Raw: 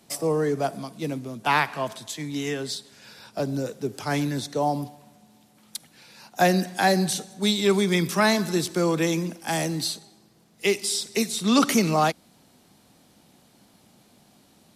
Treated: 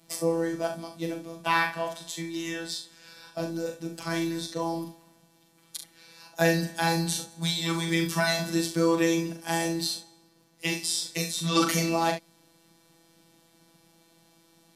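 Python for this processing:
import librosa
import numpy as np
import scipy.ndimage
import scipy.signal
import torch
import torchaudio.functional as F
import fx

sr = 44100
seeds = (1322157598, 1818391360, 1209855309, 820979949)

y = fx.notch_comb(x, sr, f0_hz=430.0)
y = fx.robotise(y, sr, hz=166.0)
y = fx.room_early_taps(y, sr, ms=(40, 69), db=(-6.0, -10.5))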